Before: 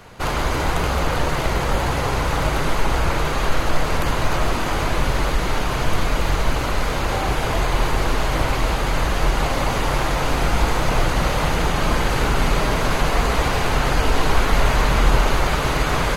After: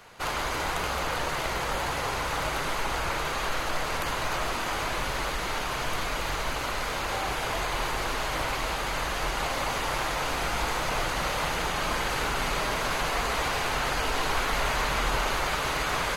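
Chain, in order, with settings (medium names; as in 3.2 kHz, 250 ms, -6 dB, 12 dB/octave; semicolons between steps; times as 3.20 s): bass shelf 430 Hz -11.5 dB; trim -4 dB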